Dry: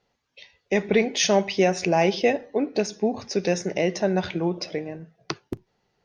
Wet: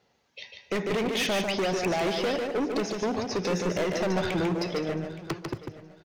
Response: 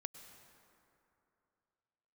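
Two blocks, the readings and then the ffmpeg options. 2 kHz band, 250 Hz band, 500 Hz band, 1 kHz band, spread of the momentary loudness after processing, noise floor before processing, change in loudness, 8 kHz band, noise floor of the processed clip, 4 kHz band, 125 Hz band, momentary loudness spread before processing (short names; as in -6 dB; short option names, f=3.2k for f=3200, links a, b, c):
-3.0 dB, -3.5 dB, -5.0 dB, -3.5 dB, 10 LU, -74 dBFS, -4.5 dB, -7.5 dB, -69 dBFS, -2.0 dB, -2.5 dB, 15 LU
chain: -filter_complex "[0:a]acrossover=split=3300[a][b];[b]acompressor=threshold=-40dB:ratio=4:attack=1:release=60[c];[a][c]amix=inputs=2:normalize=0,highpass=74,acompressor=threshold=-21dB:ratio=4,volume=29dB,asoftclip=hard,volume=-29dB,aecho=1:1:870|1740:0.133|0.0333,asplit=2[d][e];[1:a]atrim=start_sample=2205,afade=t=out:st=0.17:d=0.01,atrim=end_sample=7938,adelay=147[f];[e][f]afir=irnorm=-1:irlink=0,volume=-0.5dB[g];[d][g]amix=inputs=2:normalize=0,volume=4dB"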